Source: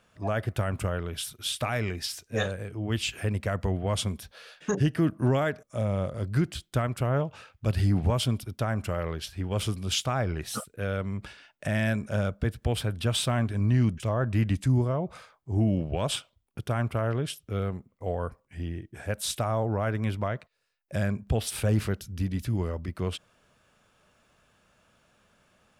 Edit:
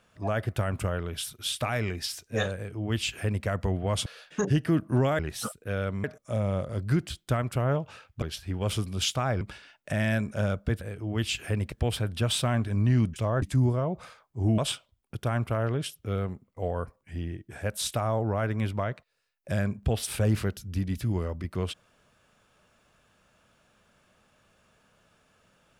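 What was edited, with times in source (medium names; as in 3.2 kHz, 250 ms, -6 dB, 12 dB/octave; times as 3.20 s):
2.55–3.46 s: copy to 12.56 s
4.06–4.36 s: delete
7.67–9.12 s: delete
10.31–11.16 s: move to 5.49 s
14.26–14.54 s: delete
15.70–16.02 s: delete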